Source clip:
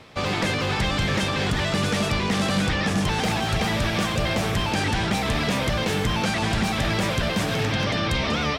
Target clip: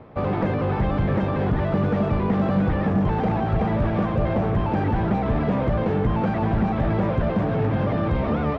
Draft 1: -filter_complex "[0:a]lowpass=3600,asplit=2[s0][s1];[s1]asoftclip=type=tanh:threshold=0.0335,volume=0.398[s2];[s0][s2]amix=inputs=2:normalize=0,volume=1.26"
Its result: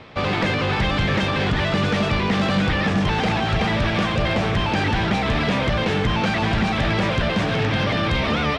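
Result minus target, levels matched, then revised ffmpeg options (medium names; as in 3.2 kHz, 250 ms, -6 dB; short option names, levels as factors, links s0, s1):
4 kHz band +18.0 dB
-filter_complex "[0:a]lowpass=920,asplit=2[s0][s1];[s1]asoftclip=type=tanh:threshold=0.0335,volume=0.398[s2];[s0][s2]amix=inputs=2:normalize=0,volume=1.26"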